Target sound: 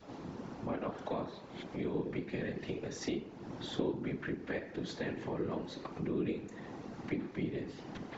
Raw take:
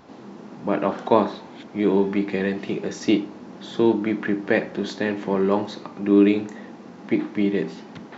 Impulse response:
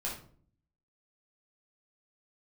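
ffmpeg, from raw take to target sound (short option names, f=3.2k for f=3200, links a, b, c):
-af "bandreject=f=80.34:t=h:w=4,bandreject=f=160.68:t=h:w=4,bandreject=f=241.02:t=h:w=4,bandreject=f=321.36:t=h:w=4,bandreject=f=401.7:t=h:w=4,bandreject=f=482.04:t=h:w=4,bandreject=f=562.38:t=h:w=4,bandreject=f=642.72:t=h:w=4,bandreject=f=723.06:t=h:w=4,bandreject=f=803.4:t=h:w=4,bandreject=f=883.74:t=h:w=4,bandreject=f=964.08:t=h:w=4,bandreject=f=1.04442k:t=h:w=4,bandreject=f=1.12476k:t=h:w=4,bandreject=f=1.2051k:t=h:w=4,bandreject=f=1.28544k:t=h:w=4,bandreject=f=1.36578k:t=h:w=4,bandreject=f=1.44612k:t=h:w=4,bandreject=f=1.52646k:t=h:w=4,bandreject=f=1.6068k:t=h:w=4,bandreject=f=1.68714k:t=h:w=4,bandreject=f=1.76748k:t=h:w=4,bandreject=f=1.84782k:t=h:w=4,bandreject=f=1.92816k:t=h:w=4,bandreject=f=2.0085k:t=h:w=4,bandreject=f=2.08884k:t=h:w=4,bandreject=f=2.16918k:t=h:w=4,bandreject=f=2.24952k:t=h:w=4,bandreject=f=2.32986k:t=h:w=4,bandreject=f=2.4102k:t=h:w=4,bandreject=f=2.49054k:t=h:w=4,bandreject=f=2.57088k:t=h:w=4,bandreject=f=2.65122k:t=h:w=4,bandreject=f=2.73156k:t=h:w=4,bandreject=f=2.8119k:t=h:w=4,bandreject=f=2.89224k:t=h:w=4,bandreject=f=2.97258k:t=h:w=4,bandreject=f=3.05292k:t=h:w=4,bandreject=f=3.13326k:t=h:w=4,adynamicequalizer=threshold=0.01:dfrequency=850:dqfactor=1.9:tfrequency=850:tqfactor=1.9:attack=5:release=100:ratio=0.375:range=2.5:mode=cutabove:tftype=bell,acompressor=threshold=-36dB:ratio=2.5,afftfilt=real='hypot(re,im)*cos(2*PI*random(0))':imag='hypot(re,im)*sin(2*PI*random(1))':win_size=512:overlap=0.75,volume=2.5dB"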